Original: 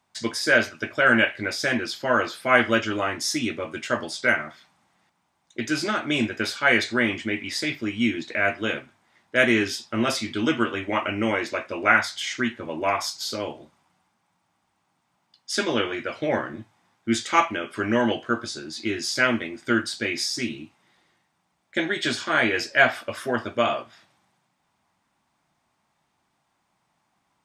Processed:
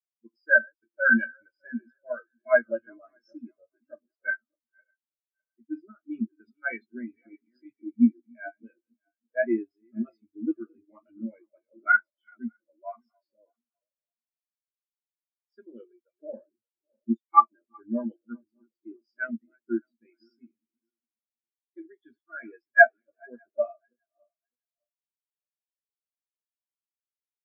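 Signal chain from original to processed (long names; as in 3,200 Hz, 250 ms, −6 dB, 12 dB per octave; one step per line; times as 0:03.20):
feedback delay that plays each chunk backwards 303 ms, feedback 71%, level −9 dB
every bin expanded away from the loudest bin 4 to 1
level +2 dB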